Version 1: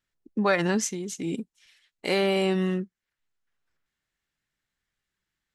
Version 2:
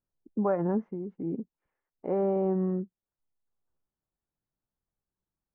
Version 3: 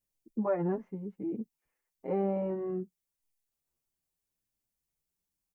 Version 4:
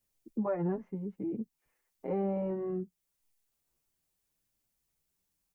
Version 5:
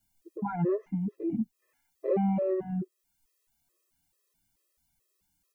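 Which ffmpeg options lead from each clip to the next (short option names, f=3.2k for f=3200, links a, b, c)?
-af "lowpass=f=1k:w=0.5412,lowpass=f=1k:w=1.3066,volume=-2.5dB"
-filter_complex "[0:a]aexciter=amount=1.8:drive=7.1:freq=2k,asplit=2[a][b];[b]adelay=7.1,afreqshift=0.91[c];[a][c]amix=inputs=2:normalize=1"
-filter_complex "[0:a]acrossover=split=130[a][b];[b]acompressor=threshold=-50dB:ratio=1.5[c];[a][c]amix=inputs=2:normalize=0,volume=5.5dB"
-af "afftfilt=real='re*gt(sin(2*PI*2.3*pts/sr)*(1-2*mod(floor(b*sr/1024/340),2)),0)':imag='im*gt(sin(2*PI*2.3*pts/sr)*(1-2*mod(floor(b*sr/1024/340),2)),0)':win_size=1024:overlap=0.75,volume=8dB"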